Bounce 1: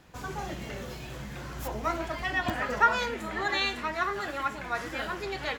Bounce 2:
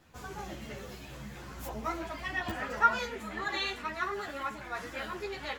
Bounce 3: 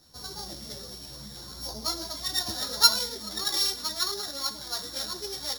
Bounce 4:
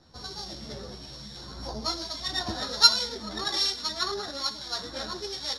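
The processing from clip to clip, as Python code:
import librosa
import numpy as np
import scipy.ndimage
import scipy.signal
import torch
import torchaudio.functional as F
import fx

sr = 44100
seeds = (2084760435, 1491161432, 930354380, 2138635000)

y1 = fx.high_shelf(x, sr, hz=9600.0, db=3.5)
y1 = fx.ensemble(y1, sr)
y1 = F.gain(torch.from_numpy(y1), -2.0).numpy()
y2 = np.r_[np.sort(y1[:len(y1) // 8 * 8].reshape(-1, 8), axis=1).ravel(), y1[len(y1) // 8 * 8:]]
y2 = fx.high_shelf_res(y2, sr, hz=3300.0, db=8.0, q=3.0)
y2 = F.gain(torch.from_numpy(y2), -1.5).numpy()
y3 = scipy.signal.sosfilt(scipy.signal.butter(2, 4600.0, 'lowpass', fs=sr, output='sos'), y2)
y3 = fx.harmonic_tremolo(y3, sr, hz=1.2, depth_pct=50, crossover_hz=2100.0)
y3 = F.gain(torch.from_numpy(y3), 5.5).numpy()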